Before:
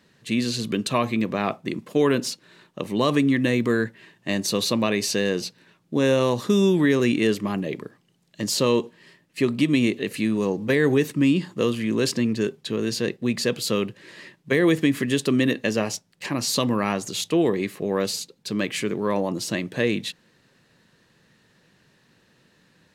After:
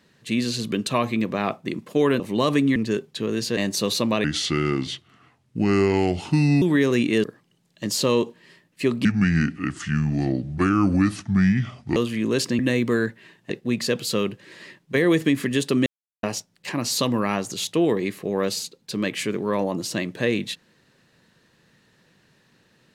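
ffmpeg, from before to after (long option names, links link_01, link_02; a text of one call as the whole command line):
ffmpeg -i in.wav -filter_complex "[0:a]asplit=13[link_01][link_02][link_03][link_04][link_05][link_06][link_07][link_08][link_09][link_10][link_11][link_12][link_13];[link_01]atrim=end=2.202[link_14];[link_02]atrim=start=2.808:end=3.372[link_15];[link_03]atrim=start=12.258:end=13.072[link_16];[link_04]atrim=start=4.278:end=4.954[link_17];[link_05]atrim=start=4.95:end=6.71,asetpts=PTS-STARTPTS,asetrate=32634,aresample=44100,atrim=end_sample=104886,asetpts=PTS-STARTPTS[link_18];[link_06]atrim=start=6.706:end=7.332[link_19];[link_07]atrim=start=7.808:end=9.624[link_20];[link_08]atrim=start=9.62:end=11.63,asetpts=PTS-STARTPTS,asetrate=30429,aresample=44100,atrim=end_sample=128465,asetpts=PTS-STARTPTS[link_21];[link_09]atrim=start=11.626:end=12.262[link_22];[link_10]atrim=start=3.368:end=4.282[link_23];[link_11]atrim=start=13.068:end=15.43,asetpts=PTS-STARTPTS,afade=type=out:start_time=2.358:duration=0.004:curve=hsin[link_24];[link_12]atrim=start=15.43:end=15.8,asetpts=PTS-STARTPTS,volume=0[link_25];[link_13]atrim=start=15.8,asetpts=PTS-STARTPTS,afade=type=in:duration=0.004:curve=hsin[link_26];[link_14][link_15]acrossfade=duration=0.004:curve1=hsin:curve2=hsin[link_27];[link_27][link_16]acrossfade=duration=0.004:curve1=hsin:curve2=hsin[link_28];[link_28][link_17]acrossfade=duration=0.004:curve1=hsin:curve2=hsin[link_29];[link_29][link_18]acrossfade=duration=0.004:curve1=hsin:curve2=hsin[link_30];[link_30][link_19]acrossfade=duration=0.004:curve1=hsin:curve2=hsin[link_31];[link_31][link_20]acrossfade=duration=0.004:curve1=hsin:curve2=hsin[link_32];[link_32][link_21]acrossfade=duration=0.004:curve1=hsin:curve2=hsin[link_33];[link_33][link_22]acrossfade=duration=0.004:curve1=hsin:curve2=hsin[link_34];[link_34][link_23]acrossfade=duration=0.004:curve1=hsin:curve2=hsin[link_35];[link_24][link_25][link_26]concat=n=3:v=0:a=1[link_36];[link_35][link_36]acrossfade=duration=0.004:curve1=hsin:curve2=hsin" out.wav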